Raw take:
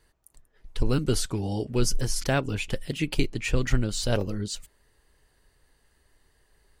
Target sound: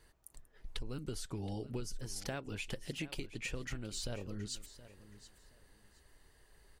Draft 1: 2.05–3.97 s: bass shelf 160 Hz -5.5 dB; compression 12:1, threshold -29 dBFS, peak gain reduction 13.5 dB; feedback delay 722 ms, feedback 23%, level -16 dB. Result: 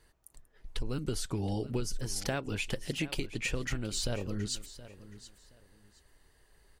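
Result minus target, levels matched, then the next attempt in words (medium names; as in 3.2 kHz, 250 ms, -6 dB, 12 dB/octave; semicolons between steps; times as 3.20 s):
compression: peak gain reduction -7.5 dB
2.05–3.97 s: bass shelf 160 Hz -5.5 dB; compression 12:1, threshold -37 dBFS, peak gain reduction 21 dB; feedback delay 722 ms, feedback 23%, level -16 dB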